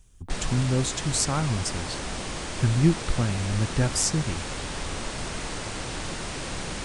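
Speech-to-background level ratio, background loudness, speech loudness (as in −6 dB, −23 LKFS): 7.0 dB, −33.0 LKFS, −26.0 LKFS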